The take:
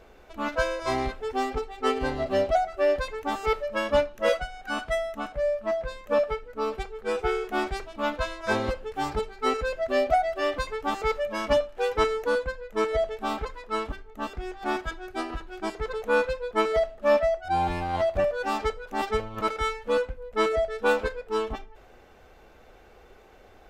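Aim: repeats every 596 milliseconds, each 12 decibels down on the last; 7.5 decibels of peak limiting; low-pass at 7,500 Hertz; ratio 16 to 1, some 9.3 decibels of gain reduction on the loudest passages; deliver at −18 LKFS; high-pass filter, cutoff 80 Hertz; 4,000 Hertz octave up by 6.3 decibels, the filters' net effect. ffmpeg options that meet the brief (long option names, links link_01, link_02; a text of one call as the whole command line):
ffmpeg -i in.wav -af "highpass=80,lowpass=7500,equalizer=frequency=4000:width_type=o:gain=8.5,acompressor=threshold=-25dB:ratio=16,alimiter=limit=-23dB:level=0:latency=1,aecho=1:1:596|1192|1788:0.251|0.0628|0.0157,volume=15dB" out.wav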